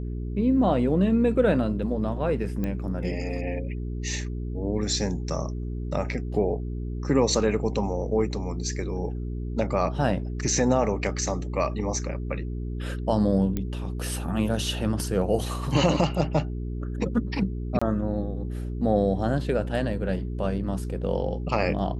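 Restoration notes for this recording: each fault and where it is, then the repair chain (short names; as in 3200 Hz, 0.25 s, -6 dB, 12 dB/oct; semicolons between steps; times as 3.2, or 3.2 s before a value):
hum 60 Hz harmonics 7 -31 dBFS
2.64 pop -18 dBFS
13.57 pop -15 dBFS
17.79–17.82 gap 25 ms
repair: de-click; de-hum 60 Hz, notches 7; interpolate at 17.79, 25 ms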